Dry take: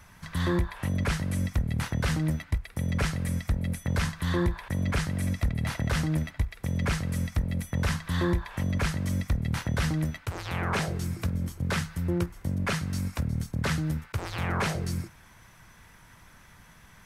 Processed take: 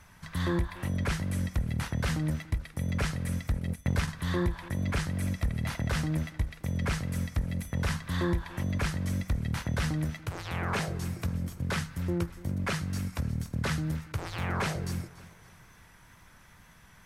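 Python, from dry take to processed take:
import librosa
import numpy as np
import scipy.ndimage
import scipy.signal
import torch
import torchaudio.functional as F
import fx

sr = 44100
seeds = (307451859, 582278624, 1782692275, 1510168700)

y = fx.echo_feedback(x, sr, ms=287, feedback_pct=45, wet_db=-18.5)
y = fx.wow_flutter(y, sr, seeds[0], rate_hz=2.1, depth_cents=26.0)
y = fx.transient(y, sr, attack_db=5, sustain_db=-10, at=(3.59, 4.07), fade=0.02)
y = y * librosa.db_to_amplitude(-2.5)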